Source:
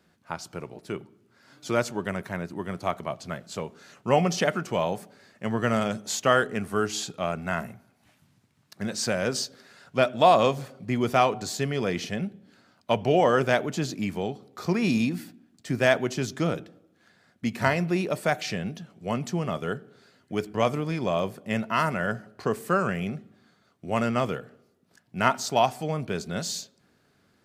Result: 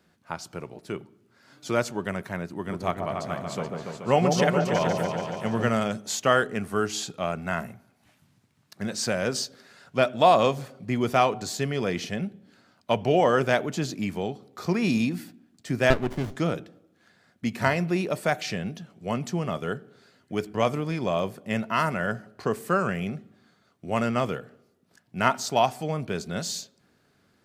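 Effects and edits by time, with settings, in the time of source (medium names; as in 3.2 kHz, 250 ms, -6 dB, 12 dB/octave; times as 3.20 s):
2.51–5.69 s: delay with an opening low-pass 143 ms, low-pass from 750 Hz, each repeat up 2 oct, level -3 dB
15.90–16.36 s: sliding maximum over 33 samples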